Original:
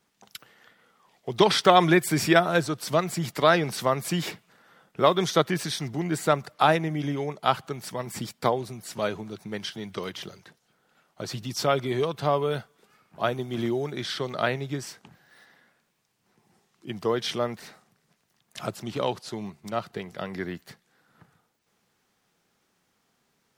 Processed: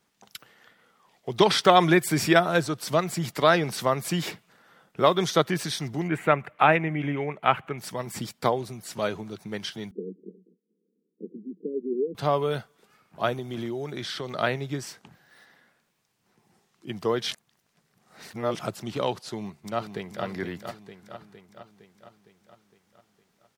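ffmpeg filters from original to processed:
ffmpeg -i in.wav -filter_complex "[0:a]asettb=1/sr,asplit=3[link_01][link_02][link_03];[link_01]atrim=end=6.084[link_04];[link_02]atrim=start=6.08:end=7.78,asetpts=PTS-STARTPTS,afade=type=in:duration=0.004:curve=qsin,afade=type=out:start_time=1.696:duration=0.004:curve=qsin,highshelf=frequency=3400:width_type=q:width=3:gain=-12[link_05];[link_03]atrim=start=7.776[link_06];[link_04][link_05]acrossfade=duration=0.004:curve1=hsin:curve2=qsin[link_07];[link_07][link_06]acrossfade=duration=0.004:curve1=qsin:curve2=hsin,asettb=1/sr,asplit=3[link_08][link_09][link_10];[link_08]atrim=end=9.914[link_11];[link_09]atrim=start=9.91:end=12.15,asetpts=PTS-STARTPTS,afade=type=in:duration=0.004:curve=qsin,afade=type=out:start_time=2.236:duration=0.004:curve=qsin,asuperpass=centerf=290:order=20:qfactor=0.97[link_12];[link_10]atrim=start=12.146[link_13];[link_11][link_12]acrossfade=duration=0.004:curve1=hsin:curve2=qsin[link_14];[link_14][link_13]acrossfade=duration=0.004:curve1=qsin:curve2=hsin,asettb=1/sr,asplit=3[link_15][link_16][link_17];[link_15]atrim=end=13.354[link_18];[link_16]atrim=start=13.35:end=14.34,asetpts=PTS-STARTPTS,afade=type=in:duration=0.004:curve=qsin,afade=type=out:start_time=0.986:duration=0.004:curve=qsin,acompressor=threshold=-30dB:ratio=2.5:attack=3.2:release=140:knee=1:detection=peak[link_19];[link_17]atrim=start=14.336[link_20];[link_18][link_19]acrossfade=duration=0.004:curve1=hsin:curve2=qsin[link_21];[link_21][link_20]acrossfade=duration=0.004:curve1=qsin:curve2=hsin,asplit=2[link_22][link_23];[link_23]afade=type=in:start_time=19.34:duration=0.01,afade=type=out:start_time=20.24:duration=0.01,aecho=0:1:460|920|1380|1840|2300|2760|3220|3680:0.446684|0.26801|0.160806|0.0964837|0.0578902|0.0347341|0.0208405|0.0125043[link_24];[link_22][link_24]amix=inputs=2:normalize=0,asplit=3[link_25][link_26][link_27];[link_25]atrim=end=17.312[link_28];[link_26]atrim=start=17.308:end=18.592,asetpts=PTS-STARTPTS,areverse[link_29];[link_27]atrim=start=18.588[link_30];[link_28][link_29]acrossfade=duration=0.004:curve1=hsin:curve2=hsin[link_31];[link_31][link_30]acrossfade=duration=0.004:curve1=hsin:curve2=hsin" out.wav

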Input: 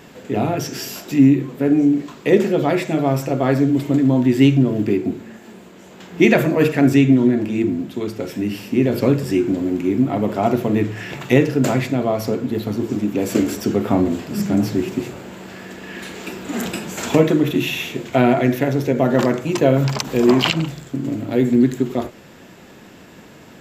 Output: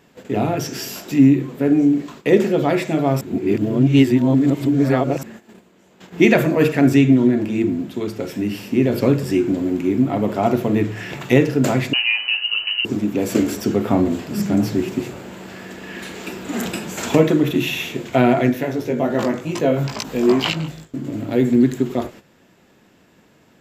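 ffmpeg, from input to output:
ffmpeg -i in.wav -filter_complex "[0:a]asettb=1/sr,asplit=3[link_01][link_02][link_03];[link_01]atrim=end=11.934[link_04];[link_02]atrim=start=11.93:end=12.85,asetpts=PTS-STARTPTS,afade=type=in:duration=0.004:curve=qsin,afade=type=out:start_time=0.916:duration=0.004:curve=qsin,lowpass=frequency=2600:width_type=q:width=0.5098,lowpass=frequency=2600:width_type=q:width=0.6013,lowpass=frequency=2600:width_type=q:width=0.9,lowpass=frequency=2600:width_type=q:width=2.563,afreqshift=-3100[link_05];[link_03]atrim=start=12.846[link_06];[link_04][link_05]acrossfade=duration=0.004:curve1=hsin:curve2=qsin[link_07];[link_07][link_06]acrossfade=duration=0.004:curve1=qsin:curve2=hsin,asplit=3[link_08][link_09][link_10];[link_08]afade=type=out:start_time=18.49:duration=0.02[link_11];[link_09]flanger=delay=18:depth=2.2:speed=2.4,afade=type=in:start_time=18.49:duration=0.02,afade=type=out:start_time=21.13:duration=0.02[link_12];[link_10]afade=type=in:start_time=21.13:duration=0.02[link_13];[link_11][link_12][link_13]amix=inputs=3:normalize=0,asplit=3[link_14][link_15][link_16];[link_14]atrim=end=3.212[link_17];[link_15]atrim=start=3.208:end=5.232,asetpts=PTS-STARTPTS,areverse[link_18];[link_16]atrim=start=5.228[link_19];[link_17][link_18]acrossfade=duration=0.004:curve1=hsin:curve2=hsin[link_20];[link_20][link_19]acrossfade=duration=0.004:curve1=hsin:curve2=hsin,agate=range=-11dB:threshold=-38dB:ratio=16:detection=peak" out.wav

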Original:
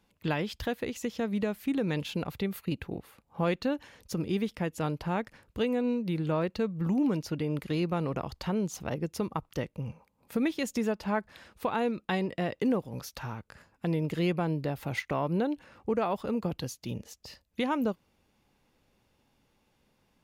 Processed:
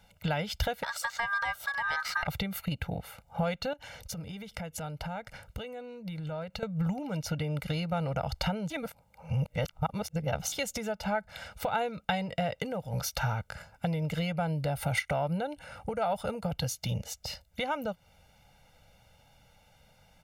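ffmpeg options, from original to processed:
ffmpeg -i in.wav -filter_complex "[0:a]asettb=1/sr,asplit=3[link_01][link_02][link_03];[link_01]atrim=end=0.834[link_04];[link_02]atrim=start=0.83:end=2.27,asetpts=PTS-STARTPTS,afade=type=in:duration=0.004:curve=qsin,afade=type=out:start_time=1.436:duration=0.004:curve=qsin,aeval=exprs='val(0)*sin(2*PI*1400*n/s)':channel_layout=same[link_05];[link_03]atrim=start=2.266[link_06];[link_04][link_05]acrossfade=duration=0.004:curve1=hsin:curve2=qsin[link_07];[link_07][link_06]acrossfade=duration=0.004:curve1=qsin:curve2=hsin,asettb=1/sr,asplit=3[link_08][link_09][link_10];[link_08]atrim=end=3.734[link_11];[link_09]atrim=start=3.73:end=6.63,asetpts=PTS-STARTPTS,afade=type=in:duration=0.004:curve=qsin,afade=type=out:start_time=2.896:duration=0.004:curve=qsin,acompressor=threshold=-43dB:ratio=6:attack=3.2:release=140:knee=1:detection=peak[link_12];[link_10]atrim=start=6.626[link_13];[link_11][link_12]acrossfade=duration=0.004:curve1=hsin:curve2=qsin[link_14];[link_14][link_13]acrossfade=duration=0.004:curve1=qsin:curve2=hsin,asettb=1/sr,asplit=3[link_15][link_16][link_17];[link_15]atrim=end=14.394[link_18];[link_16]atrim=start=14.39:end=16.52,asetpts=PTS-STARTPTS,afade=type=in:duration=0.004:curve=qsin,afade=type=out:start_time=2.126:duration=0.004:curve=qsin,equalizer=frequency=9400:width_type=o:width=0.21:gain=12[link_19];[link_17]atrim=start=16.516[link_20];[link_18][link_19]acrossfade=duration=0.004:curve1=hsin:curve2=qsin[link_21];[link_21][link_20]acrossfade=duration=0.004:curve1=qsin:curve2=hsin,asplit=3[link_22][link_23][link_24];[link_22]atrim=end=8.702[link_25];[link_23]atrim=start=8.698:end=10.522,asetpts=PTS-STARTPTS,areverse[link_26];[link_24]atrim=start=10.518[link_27];[link_25][link_26]acrossfade=duration=0.004:curve1=hsin:curve2=hsin[link_28];[link_28][link_27]acrossfade=duration=0.004:curve1=hsin:curve2=hsin,acompressor=threshold=-35dB:ratio=6,equalizer=frequency=240:width_type=o:width=0.4:gain=-10.5,aecho=1:1:1.4:0.94,volume=6.5dB" out.wav

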